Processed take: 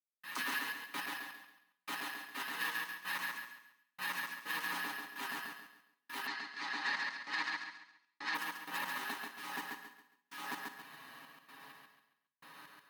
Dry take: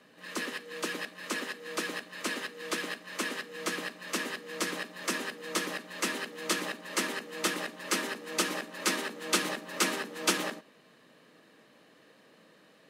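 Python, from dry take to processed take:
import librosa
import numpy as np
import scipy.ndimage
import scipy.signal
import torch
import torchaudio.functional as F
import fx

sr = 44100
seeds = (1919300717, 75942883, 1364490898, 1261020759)

y = fx.fade_in_head(x, sr, length_s=0.82)
y = fx.low_shelf_res(y, sr, hz=690.0, db=-7.5, q=3.0)
y = y + 0.98 * np.pad(y, (int(7.2 * sr / 1000.0), 0))[:len(y)]
y = fx.over_compress(y, sr, threshold_db=-39.0, ratio=-1.0)
y = fx.step_gate(y, sr, bpm=64, pattern='.xx.x...x', floor_db=-60.0, edge_ms=4.5)
y = fx.echo_feedback(y, sr, ms=137, feedback_pct=34, wet_db=-3.5)
y = fx.rev_gated(y, sr, seeds[0], gate_ms=220, shape='flat', drr_db=10.5)
y = np.repeat(scipy.signal.resample_poly(y, 1, 3), 3)[:len(y)]
y = fx.cabinet(y, sr, low_hz=210.0, low_slope=12, high_hz=6500.0, hz=(490.0, 2000.0, 2900.0, 4400.0), db=(-8, 6, -3, 8), at=(6.26, 8.34), fade=0.02)
y = y * 10.0 ** (-3.5 / 20.0)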